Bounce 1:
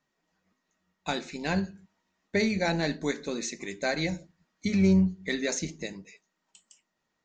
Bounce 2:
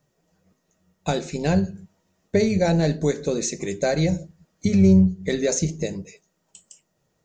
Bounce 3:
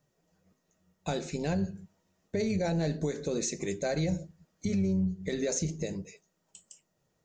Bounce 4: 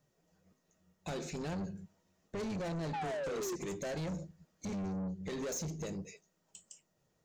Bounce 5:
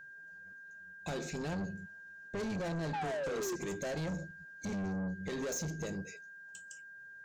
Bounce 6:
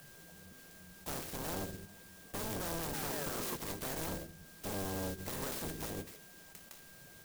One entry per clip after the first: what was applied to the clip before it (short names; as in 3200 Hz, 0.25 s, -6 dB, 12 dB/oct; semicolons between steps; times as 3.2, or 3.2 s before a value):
graphic EQ 125/250/500/1000/2000/4000 Hz +10/-8/+4/-8/-9/-7 dB; in parallel at +2.5 dB: compressor, threshold -33 dBFS, peak gain reduction 14 dB; on the sum: gain +5 dB
limiter -17 dBFS, peak gain reduction 10.5 dB; gain -5 dB
painted sound fall, 2.93–3.56, 340–870 Hz -29 dBFS; soft clip -34.5 dBFS, distortion -8 dB; gain -1 dB
whine 1600 Hz -50 dBFS; gain +1 dB
spectral limiter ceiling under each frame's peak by 20 dB; in parallel at -11 dB: decimation with a swept rate 37×, swing 100% 2.5 Hz; on the sum: clock jitter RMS 0.12 ms; gain -3 dB